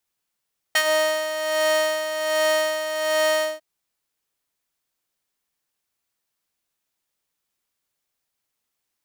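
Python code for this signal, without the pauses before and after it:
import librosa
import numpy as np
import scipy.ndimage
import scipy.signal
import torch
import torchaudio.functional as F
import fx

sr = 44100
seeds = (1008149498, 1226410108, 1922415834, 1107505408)

y = fx.sub_patch_tremolo(sr, seeds[0], note=75, wave='square', wave2='saw', interval_st=12, detune_cents=3, level2_db=-9.0, sub_db=-7, noise_db=-29.5, kind='highpass', cutoff_hz=450.0, q=1.3, env_oct=2.0, env_decay_s=0.13, env_sustain_pct=40, attack_ms=6.9, decay_s=0.07, sustain_db=-10.5, release_s=0.18, note_s=2.67, lfo_hz=1.3, tremolo_db=8.0)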